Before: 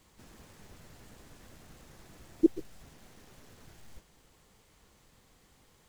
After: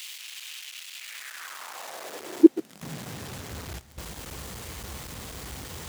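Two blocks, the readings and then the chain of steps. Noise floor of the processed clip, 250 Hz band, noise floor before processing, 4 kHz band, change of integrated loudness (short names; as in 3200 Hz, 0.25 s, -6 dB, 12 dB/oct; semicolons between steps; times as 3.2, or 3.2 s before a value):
-51 dBFS, +10.5 dB, -65 dBFS, n/a, +1.0 dB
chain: zero-crossing step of -37 dBFS; high-pass sweep 2800 Hz -> 64 Hz, 0.94–3.52; gain +2.5 dB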